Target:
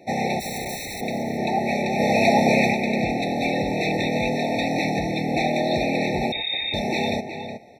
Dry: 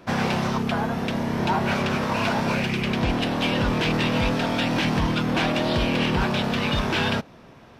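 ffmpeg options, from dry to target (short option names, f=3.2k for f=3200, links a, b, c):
-filter_complex "[0:a]highpass=f=260:p=1,equalizer=f=730:w=1.8:g=4,asplit=3[a][b][c];[a]afade=t=out:st=0.39:d=0.02[d];[b]aeval=exprs='(mod(22.4*val(0)+1,2)-1)/22.4':c=same,afade=t=in:st=0.39:d=0.02,afade=t=out:st=1:d=0.02[e];[c]afade=t=in:st=1:d=0.02[f];[d][e][f]amix=inputs=3:normalize=0,asplit=3[g][h][i];[g]afade=t=out:st=1.98:d=0.02[j];[h]acontrast=54,afade=t=in:st=1.98:d=0.02,afade=t=out:st=2.72:d=0.02[k];[i]afade=t=in:st=2.72:d=0.02[l];[j][k][l]amix=inputs=3:normalize=0,asplit=2[m][n];[n]adelay=367.3,volume=-8dB,highshelf=f=4k:g=-8.27[o];[m][o]amix=inputs=2:normalize=0,asettb=1/sr,asplit=3[p][q][r];[p]atrim=end=6.324[s];[q]atrim=start=6.32:end=6.74,asetpts=PTS-STARTPTS,afade=t=in:d=0.004:c=qsin,afade=t=out:st=0.416:d=0.004:c=qsin,lowpass=f=3.3k:t=q:w=0.5098,lowpass=f=3.3k:t=q:w=0.6013,lowpass=f=3.3k:t=q:w=0.9,lowpass=f=3.3k:t=q:w=2.563,afreqshift=-3900[t];[r]atrim=start=6.736[u];[s][t]acrossfade=d=0.004:c1=hsin:c2=qsin[v];[v][u]acrossfade=d=0.004:c1=qsin:c2=hsin,afftfilt=real='re*eq(mod(floor(b*sr/1024/890),2),0)':imag='im*eq(mod(floor(b*sr/1024/890),2),0)':win_size=1024:overlap=0.75,volume=1.5dB"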